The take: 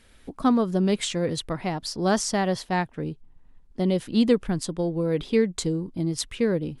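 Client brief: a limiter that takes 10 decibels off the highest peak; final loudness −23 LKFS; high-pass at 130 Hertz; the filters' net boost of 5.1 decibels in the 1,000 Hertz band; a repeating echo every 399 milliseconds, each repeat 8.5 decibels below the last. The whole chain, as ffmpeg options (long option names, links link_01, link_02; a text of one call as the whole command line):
ffmpeg -i in.wav -af "highpass=130,equalizer=frequency=1000:width_type=o:gain=7,alimiter=limit=-17dB:level=0:latency=1,aecho=1:1:399|798|1197|1596:0.376|0.143|0.0543|0.0206,volume=4dB" out.wav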